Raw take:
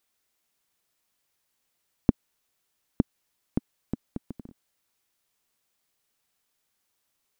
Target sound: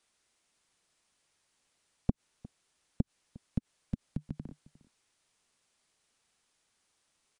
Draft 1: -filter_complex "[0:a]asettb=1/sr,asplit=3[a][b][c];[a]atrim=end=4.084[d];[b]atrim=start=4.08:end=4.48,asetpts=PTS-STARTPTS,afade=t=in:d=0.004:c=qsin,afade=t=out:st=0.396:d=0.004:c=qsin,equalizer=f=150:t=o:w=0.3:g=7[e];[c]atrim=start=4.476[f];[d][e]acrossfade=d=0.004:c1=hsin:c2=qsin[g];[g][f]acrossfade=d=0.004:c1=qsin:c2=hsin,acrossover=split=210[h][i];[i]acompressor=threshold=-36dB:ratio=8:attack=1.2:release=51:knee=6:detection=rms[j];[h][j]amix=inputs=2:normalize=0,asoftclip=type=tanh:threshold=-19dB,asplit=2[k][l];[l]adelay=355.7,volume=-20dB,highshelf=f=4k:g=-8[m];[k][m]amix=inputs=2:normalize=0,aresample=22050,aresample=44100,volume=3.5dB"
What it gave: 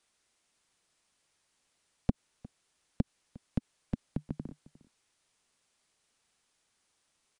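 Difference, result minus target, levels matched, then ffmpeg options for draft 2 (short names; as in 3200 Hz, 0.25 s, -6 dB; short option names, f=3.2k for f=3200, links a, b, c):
compressor: peak gain reduction -10 dB
-filter_complex "[0:a]asettb=1/sr,asplit=3[a][b][c];[a]atrim=end=4.084[d];[b]atrim=start=4.08:end=4.48,asetpts=PTS-STARTPTS,afade=t=in:d=0.004:c=qsin,afade=t=out:st=0.396:d=0.004:c=qsin,equalizer=f=150:t=o:w=0.3:g=7[e];[c]atrim=start=4.476[f];[d][e]acrossfade=d=0.004:c1=hsin:c2=qsin[g];[g][f]acrossfade=d=0.004:c1=qsin:c2=hsin,acrossover=split=210[h][i];[i]acompressor=threshold=-47.5dB:ratio=8:attack=1.2:release=51:knee=6:detection=rms[j];[h][j]amix=inputs=2:normalize=0,asoftclip=type=tanh:threshold=-19dB,asplit=2[k][l];[l]adelay=355.7,volume=-20dB,highshelf=f=4k:g=-8[m];[k][m]amix=inputs=2:normalize=0,aresample=22050,aresample=44100,volume=3.5dB"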